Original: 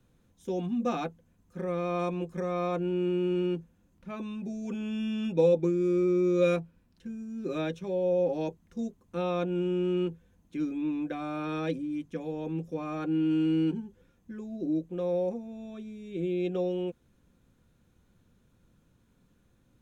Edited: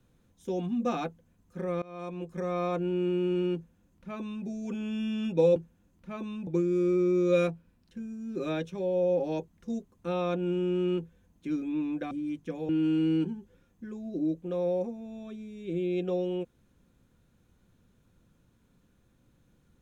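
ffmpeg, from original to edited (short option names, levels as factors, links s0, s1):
-filter_complex "[0:a]asplit=6[s0][s1][s2][s3][s4][s5];[s0]atrim=end=1.82,asetpts=PTS-STARTPTS,afade=t=out:st=1.816:d=0.004:c=hsin:silence=0.0749894[s6];[s1]atrim=start=1.82:end=5.562,asetpts=PTS-STARTPTS,afade=t=in:d=0.66:silence=0.0749894[s7];[s2]atrim=start=3.548:end=4.462[s8];[s3]atrim=start=5.558:end=11.202[s9];[s4]atrim=start=11.768:end=12.352[s10];[s5]atrim=start=13.158[s11];[s6][s7]concat=n=2:v=0:a=1[s12];[s12][s8]acrossfade=d=0.004:c1=hsin:c2=hsin[s13];[s13][s9]acrossfade=d=0.004:c1=hsin:c2=hsin[s14];[s14][s10]acrossfade=d=0.004:c1=hsin:c2=hsin[s15];[s15][s11]acrossfade=d=0.004:c1=hsin:c2=hsin"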